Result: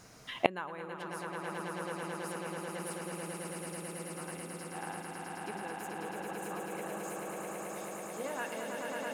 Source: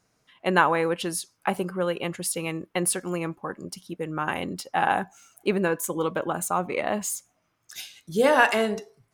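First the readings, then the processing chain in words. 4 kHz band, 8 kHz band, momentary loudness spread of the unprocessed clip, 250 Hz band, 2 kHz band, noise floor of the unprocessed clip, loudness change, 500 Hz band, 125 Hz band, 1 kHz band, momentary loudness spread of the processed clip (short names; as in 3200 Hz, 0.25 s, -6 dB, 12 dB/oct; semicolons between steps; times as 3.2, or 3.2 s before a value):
-11.5 dB, -13.0 dB, 15 LU, -12.5 dB, -13.5 dB, -72 dBFS, -13.5 dB, -12.5 dB, -11.5 dB, -13.0 dB, 4 LU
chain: swelling echo 0.109 s, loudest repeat 8, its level -4 dB; flipped gate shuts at -22 dBFS, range -35 dB; gain +14 dB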